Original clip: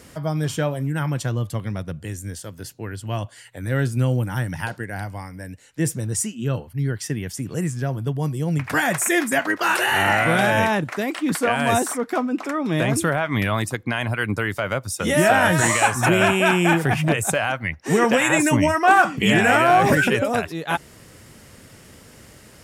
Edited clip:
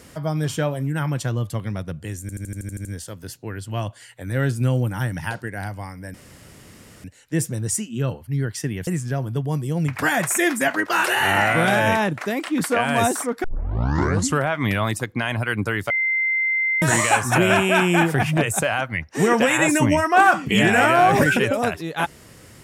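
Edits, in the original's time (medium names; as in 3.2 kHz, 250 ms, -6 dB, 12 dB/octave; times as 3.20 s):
2.21 s: stutter 0.08 s, 9 plays
5.50 s: insert room tone 0.90 s
7.33–7.58 s: delete
12.15 s: tape start 1.01 s
14.61–15.53 s: bleep 2.08 kHz -18 dBFS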